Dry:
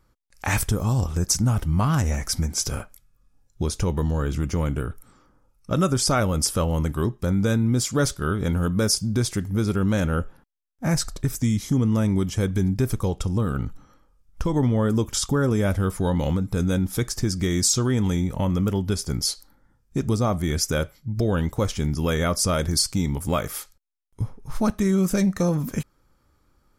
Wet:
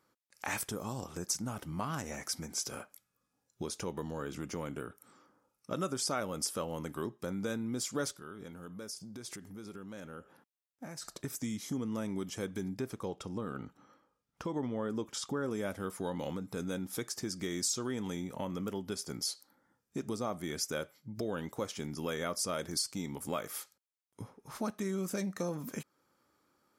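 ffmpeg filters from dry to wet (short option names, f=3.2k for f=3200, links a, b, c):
-filter_complex "[0:a]asplit=3[a][b][c];[a]afade=t=out:st=8.11:d=0.02[d];[b]acompressor=threshold=-32dB:ratio=8:attack=3.2:release=140:knee=1:detection=peak,afade=t=in:st=8.11:d=0.02,afade=t=out:st=11.02:d=0.02[e];[c]afade=t=in:st=11.02:d=0.02[f];[d][e][f]amix=inputs=3:normalize=0,asettb=1/sr,asplit=3[g][h][i];[g]atrim=end=12.794[j];[h]atrim=start=12.79:end=15.46,asetpts=PTS-STARTPTS,afade=t=in:d=0.004:c=qsin,afade=t=out:st=2.666:d=0.004:c=qsin,highshelf=f=6.8k:g=-11.5[k];[i]atrim=start=15.456[l];[j][k]acrossfade=d=0.004:c1=hsin:c2=qsin[m];[m][l]acrossfade=d=0.004:c1=qsin:c2=hsin,highpass=240,acompressor=threshold=-40dB:ratio=1.5,volume=-4dB"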